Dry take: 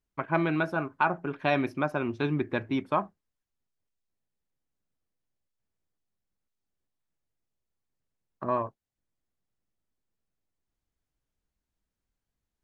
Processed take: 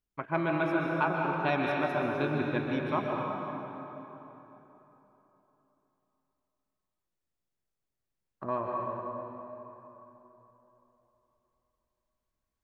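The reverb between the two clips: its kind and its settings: plate-style reverb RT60 3.6 s, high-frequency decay 0.65×, pre-delay 0.115 s, DRR -1.5 dB; gain -4.5 dB

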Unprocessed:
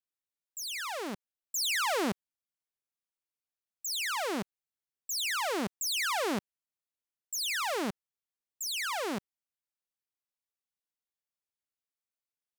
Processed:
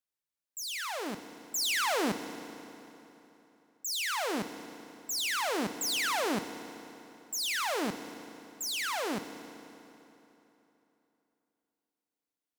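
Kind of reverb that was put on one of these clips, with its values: FDN reverb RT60 3.3 s, high-frequency decay 0.8×, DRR 9 dB

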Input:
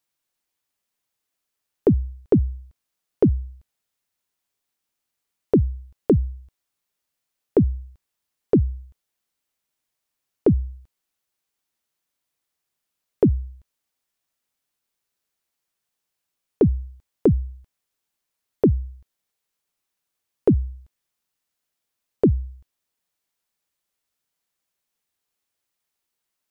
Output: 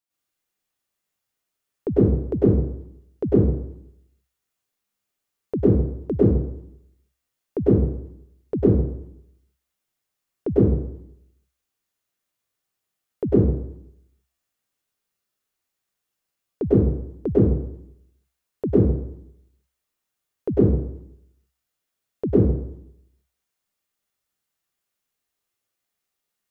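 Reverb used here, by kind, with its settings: plate-style reverb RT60 0.75 s, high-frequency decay 0.7×, pre-delay 90 ms, DRR -9.5 dB; gain -9.5 dB

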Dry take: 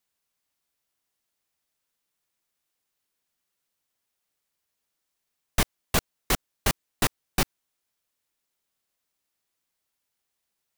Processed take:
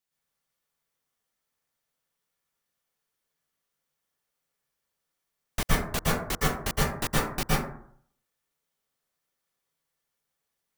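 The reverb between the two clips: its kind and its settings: plate-style reverb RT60 0.62 s, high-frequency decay 0.35×, pre-delay 0.105 s, DRR -7 dB; gain -7 dB

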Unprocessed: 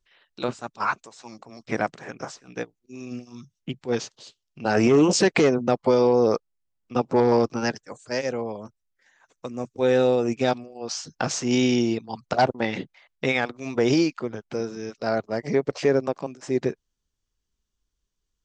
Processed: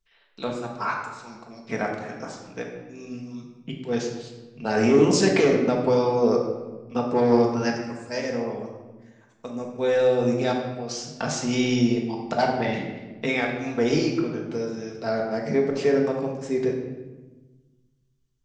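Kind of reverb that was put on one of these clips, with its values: shoebox room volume 760 m³, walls mixed, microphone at 1.6 m; gain -4 dB

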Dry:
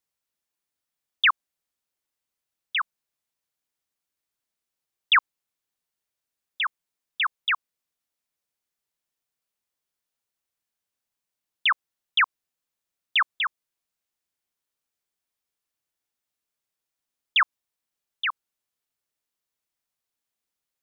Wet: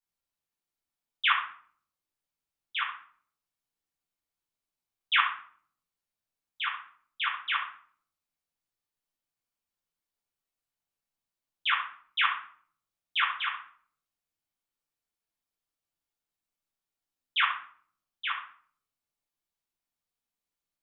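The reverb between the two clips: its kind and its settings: shoebox room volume 730 m³, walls furnished, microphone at 8 m; gain -14 dB

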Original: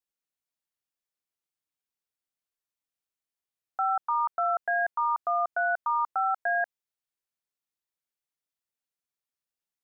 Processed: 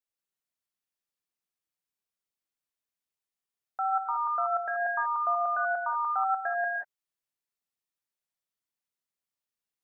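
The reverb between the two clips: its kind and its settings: non-linear reverb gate 0.21 s rising, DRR 1 dB; gain -3.5 dB

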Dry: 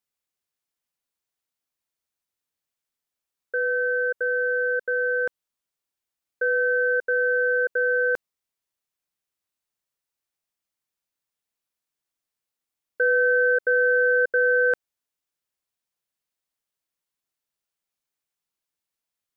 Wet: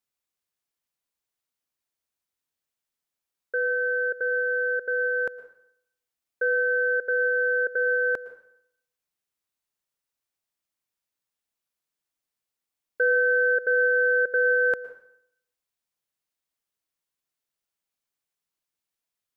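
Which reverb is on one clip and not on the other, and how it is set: plate-style reverb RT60 0.68 s, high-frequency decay 0.9×, pre-delay 0.1 s, DRR 14.5 dB; gain -1 dB

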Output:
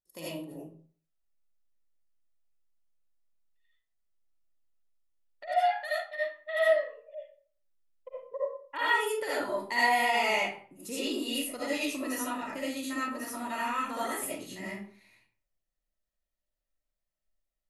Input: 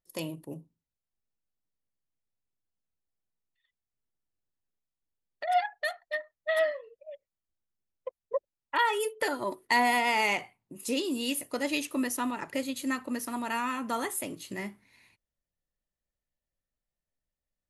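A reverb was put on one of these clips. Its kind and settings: digital reverb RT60 0.46 s, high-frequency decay 0.7×, pre-delay 35 ms, DRR -8.5 dB; gain -9.5 dB

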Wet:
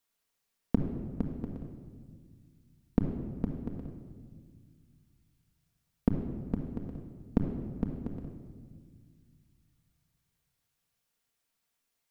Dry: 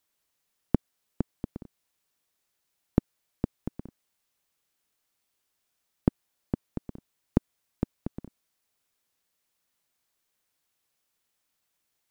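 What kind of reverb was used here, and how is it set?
shoebox room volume 2300 m³, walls mixed, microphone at 1.7 m; gain -4.5 dB

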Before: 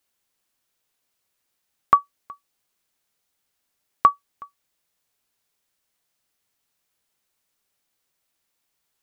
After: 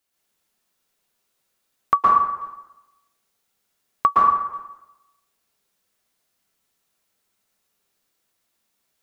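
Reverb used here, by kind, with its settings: plate-style reverb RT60 0.93 s, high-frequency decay 0.65×, pre-delay 0.105 s, DRR -5 dB; gain -2.5 dB

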